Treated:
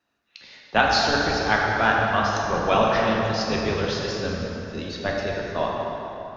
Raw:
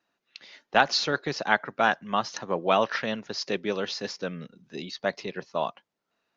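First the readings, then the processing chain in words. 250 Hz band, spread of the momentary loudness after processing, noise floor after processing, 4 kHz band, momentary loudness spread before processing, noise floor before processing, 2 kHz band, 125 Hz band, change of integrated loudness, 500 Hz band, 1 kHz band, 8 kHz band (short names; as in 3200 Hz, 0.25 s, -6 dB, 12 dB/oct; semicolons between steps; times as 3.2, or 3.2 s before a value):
+6.5 dB, 10 LU, -68 dBFS, +3.5 dB, 14 LU, -82 dBFS, +5.0 dB, +11.0 dB, +4.5 dB, +5.0 dB, +5.0 dB, n/a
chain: octaver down 1 oct, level -1 dB; plate-style reverb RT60 3.6 s, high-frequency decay 0.6×, DRR -3 dB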